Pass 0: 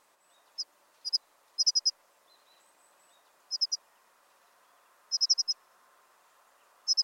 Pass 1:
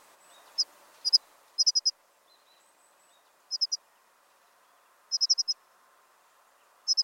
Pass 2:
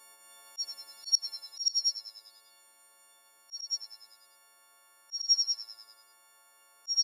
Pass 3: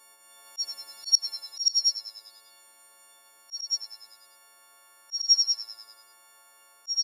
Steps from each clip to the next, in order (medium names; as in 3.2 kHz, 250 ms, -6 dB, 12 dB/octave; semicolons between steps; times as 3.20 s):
gain riding within 4 dB 0.5 s; trim +5 dB
partials quantised in pitch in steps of 4 st; frequency-shifting echo 99 ms, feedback 57%, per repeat -110 Hz, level -15 dB; slow attack 108 ms; trim -7.5 dB
level rider gain up to 5 dB